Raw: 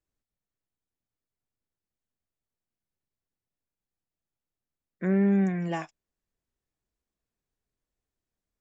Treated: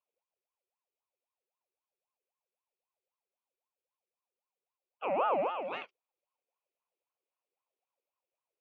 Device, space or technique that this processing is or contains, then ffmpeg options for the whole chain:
voice changer toy: -af "aeval=exprs='val(0)*sin(2*PI*720*n/s+720*0.5/3.8*sin(2*PI*3.8*n/s))':c=same,highpass=420,equalizer=f=520:t=q:w=4:g=6,equalizer=f=1.7k:t=q:w=4:g=-9,equalizer=f=2.5k:t=q:w=4:g=10,lowpass=f=3.7k:w=0.5412,lowpass=f=3.7k:w=1.3066,volume=-4dB"

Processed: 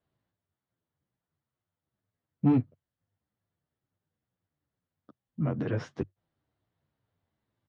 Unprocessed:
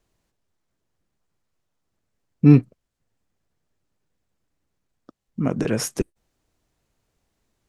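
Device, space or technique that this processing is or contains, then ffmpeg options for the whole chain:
barber-pole flanger into a guitar amplifier: -filter_complex "[0:a]asplit=2[a][b];[b]adelay=9.9,afreqshift=-2.2[c];[a][c]amix=inputs=2:normalize=1,asoftclip=type=tanh:threshold=-12.5dB,highpass=85,equalizer=f=97:t=q:w=4:g=9,equalizer=f=140:t=q:w=4:g=4,equalizer=f=410:t=q:w=4:g=-3,equalizer=f=2.5k:t=q:w=4:g=-7,lowpass=f=3.6k:w=0.5412,lowpass=f=3.6k:w=1.3066,volume=-4dB"

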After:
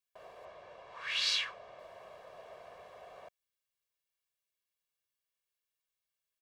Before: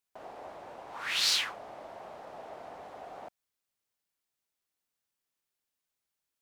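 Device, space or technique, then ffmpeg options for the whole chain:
presence and air boost: -filter_complex "[0:a]asettb=1/sr,asplit=3[a][b][c];[a]atrim=end=0.454[d];[b]atrim=start=0.45:end=1.79,asetpts=PTS-STARTPTS,afade=t=in:d=0.004:c=qsin,afade=t=out:st=1.336:d=0.004:c=qsin,lowpass=6.1k[e];[c]atrim=start=1.786[f];[d][e]acrossfade=d=0.004:c1=hsin:c2=qsin[g];[g][f]acrossfade=d=0.004:c1=qsin:c2=hsin,equalizer=f=2.7k:t=o:w=1.5:g=5.5,highshelf=f=11k:g=5,aecho=1:1:1.8:0.71,volume=-9dB"

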